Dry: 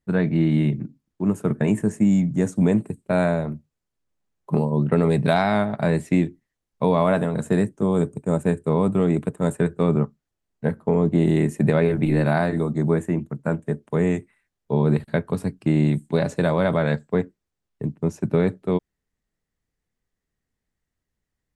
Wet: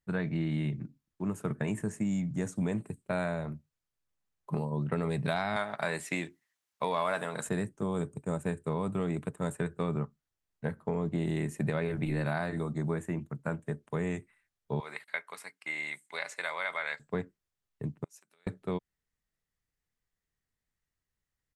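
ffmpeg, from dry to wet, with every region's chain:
-filter_complex "[0:a]asettb=1/sr,asplit=3[s0][s1][s2];[s0]atrim=end=5.564[s3];[s1]atrim=start=5.56:end=7.49,asetpts=PTS-STARTPTS,afade=t=in:d=0.004:c=qsin,afade=t=out:st=1.926:d=0.004:c=qsin,highpass=f=930:p=1,acontrast=86[s4];[s2]atrim=start=7.486[s5];[s3][s4]acrossfade=d=0.004:c1=hsin:c2=qsin[s6];[s6][s5]acrossfade=d=0.004:c1=qsin:c2=hsin,asettb=1/sr,asplit=3[s7][s8][s9];[s7]atrim=end=14.804[s10];[s8]atrim=start=14.8:end=17,asetpts=PTS-STARTPTS,afade=t=in:d=0.004:c=qsin,afade=t=out:st=2.196:d=0.004:c=qsin,highpass=1000,equalizer=f=2100:w=7.3:g=12[s11];[s9]atrim=start=16.996[s12];[s10][s11]acrossfade=d=0.004:c1=hsin:c2=qsin[s13];[s13][s12]acrossfade=d=0.004:c1=qsin:c2=hsin,asettb=1/sr,asplit=3[s14][s15][s16];[s14]atrim=end=18.044[s17];[s15]atrim=start=18.04:end=18.47,asetpts=PTS-STARTPTS,afade=t=in:d=0.004:c=qsin,afade=t=out:st=0.426:d=0.004:c=qsin,highpass=190,acompressor=threshold=0.0178:ratio=10:attack=3.2:release=140:knee=1:detection=peak,aderivative[s18];[s16]atrim=start=18.466[s19];[s17][s18]acrossfade=d=0.004:c1=hsin:c2=qsin[s20];[s20][s19]acrossfade=d=0.004:c1=qsin:c2=hsin,firequalizer=gain_entry='entry(140,0);entry(220,-4);entry(1200,3)':delay=0.05:min_phase=1,acompressor=threshold=0.0708:ratio=2,volume=0.447"

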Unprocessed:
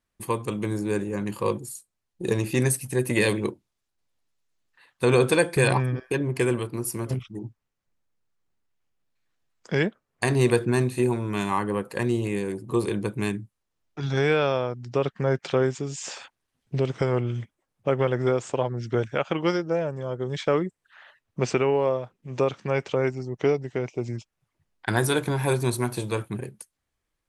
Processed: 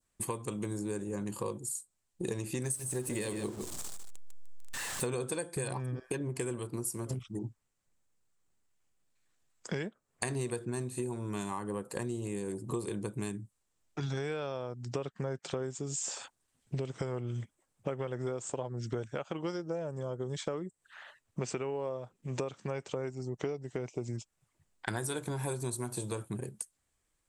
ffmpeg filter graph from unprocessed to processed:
-filter_complex "[0:a]asettb=1/sr,asplit=3[s0][s1][s2];[s0]atrim=end=2.644[s3];[s1]atrim=start=2.64:end=5.07,asetpts=PTS-STARTPTS,afade=t=in:d=0.004:c=qsin,afade=t=out:st=2.426:d=0.004:c=qsin,aeval=exprs='val(0)+0.5*0.0211*sgn(val(0))':c=same,aecho=1:1:152:0.316,atrim=end_sample=107163[s4];[s2]atrim=start=5.066[s5];[s3][s4]acrossfade=d=0.004:c1=hsin:c2=qsin[s6];[s6][s5]acrossfade=d=0.004:c1=qsin:c2=hsin,equalizer=f=7900:w=2.1:g=11.5,acompressor=threshold=0.0224:ratio=6,adynamicequalizer=threshold=0.00112:dfrequency=2200:dqfactor=1.3:tfrequency=2200:tqfactor=1.3:attack=5:release=100:ratio=0.375:range=3.5:mode=cutabove:tftype=bell"

